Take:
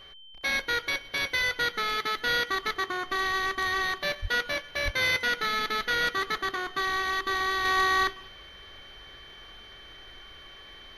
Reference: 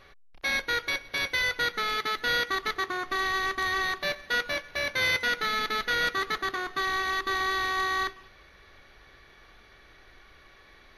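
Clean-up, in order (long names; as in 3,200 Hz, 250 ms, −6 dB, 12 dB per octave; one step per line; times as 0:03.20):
notch filter 3,100 Hz, Q 30
0:04.21–0:04.33: high-pass filter 140 Hz 24 dB per octave
0:04.84–0:04.96: high-pass filter 140 Hz 24 dB per octave
level 0 dB, from 0:07.65 −4 dB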